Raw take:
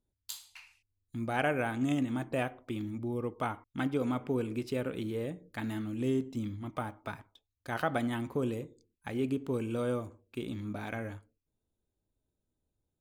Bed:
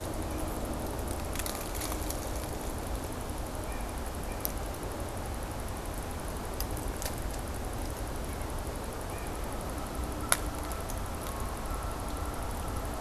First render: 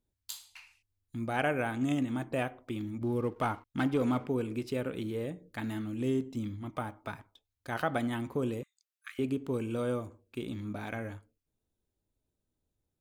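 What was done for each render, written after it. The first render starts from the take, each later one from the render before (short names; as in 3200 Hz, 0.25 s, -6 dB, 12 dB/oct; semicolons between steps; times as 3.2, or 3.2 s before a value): 3.01–4.26 sample leveller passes 1; 8.63–9.19 brick-wall FIR high-pass 1100 Hz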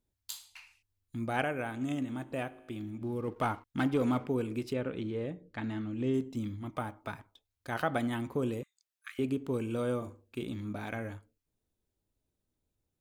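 1.44–3.28 resonator 53 Hz, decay 1.6 s, mix 40%; 4.73–6.14 air absorption 120 m; 9.98–10.43 doubler 40 ms -8 dB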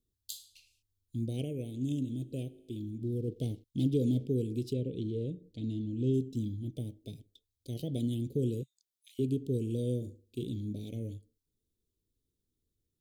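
elliptic band-stop 450–3400 Hz, stop band 60 dB; dynamic EQ 130 Hz, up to +7 dB, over -51 dBFS, Q 2.1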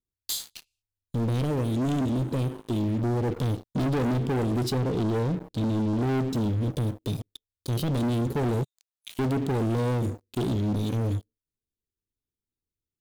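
sample leveller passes 5; limiter -23 dBFS, peak gain reduction 4 dB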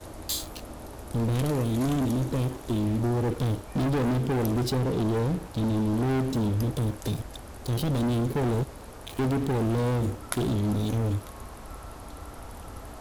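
add bed -6 dB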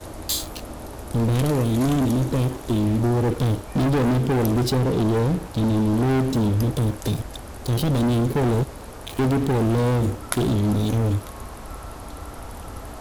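gain +5.5 dB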